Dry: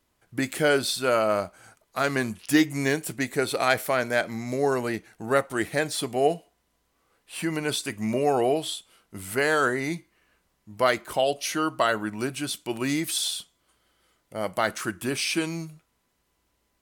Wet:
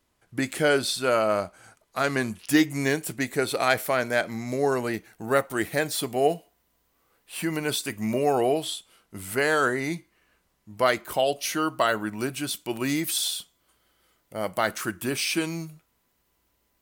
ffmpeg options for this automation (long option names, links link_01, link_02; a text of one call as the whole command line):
ffmpeg -i in.wav -af "asetnsamples=nb_out_samples=441:pad=0,asendcmd='2.32 equalizer g 4;4.93 equalizer g 14.5;8.64 equalizer g 4;11.04 equalizer g 12',equalizer=frequency=15000:width_type=o:width=0.27:gain=-5.5" out.wav